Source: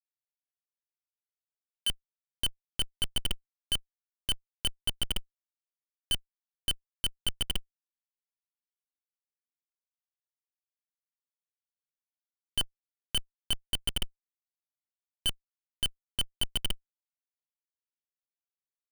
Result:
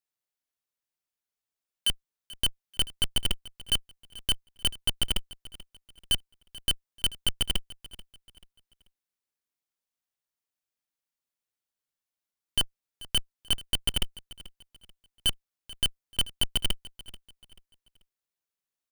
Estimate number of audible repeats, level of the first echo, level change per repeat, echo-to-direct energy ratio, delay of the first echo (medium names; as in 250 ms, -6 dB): 2, -19.0 dB, -9.5 dB, -18.5 dB, 436 ms